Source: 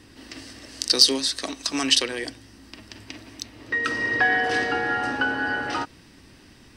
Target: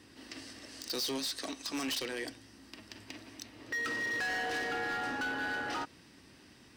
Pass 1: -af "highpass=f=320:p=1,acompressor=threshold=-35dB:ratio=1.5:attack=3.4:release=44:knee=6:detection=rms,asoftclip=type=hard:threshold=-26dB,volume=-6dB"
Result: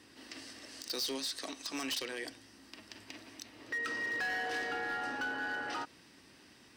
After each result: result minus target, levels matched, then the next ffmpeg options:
125 Hz band -4.5 dB; compressor: peak gain reduction +3 dB
-af "highpass=f=130:p=1,acompressor=threshold=-35dB:ratio=1.5:attack=3.4:release=44:knee=6:detection=rms,asoftclip=type=hard:threshold=-26dB,volume=-6dB"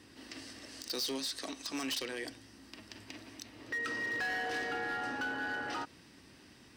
compressor: peak gain reduction +3 dB
-af "highpass=f=130:p=1,acompressor=threshold=-26dB:ratio=1.5:attack=3.4:release=44:knee=6:detection=rms,asoftclip=type=hard:threshold=-26dB,volume=-6dB"

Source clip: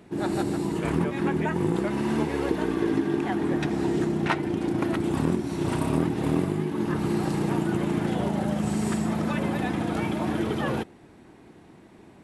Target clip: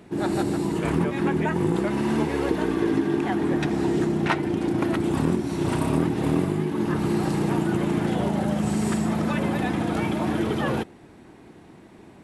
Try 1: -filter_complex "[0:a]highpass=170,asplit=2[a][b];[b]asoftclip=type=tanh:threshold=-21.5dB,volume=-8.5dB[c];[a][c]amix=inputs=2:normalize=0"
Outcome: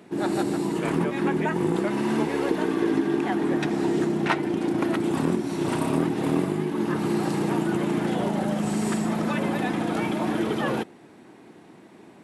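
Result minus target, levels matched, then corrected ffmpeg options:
125 Hz band -3.0 dB
-filter_complex "[0:a]asplit=2[a][b];[b]asoftclip=type=tanh:threshold=-21.5dB,volume=-8.5dB[c];[a][c]amix=inputs=2:normalize=0"

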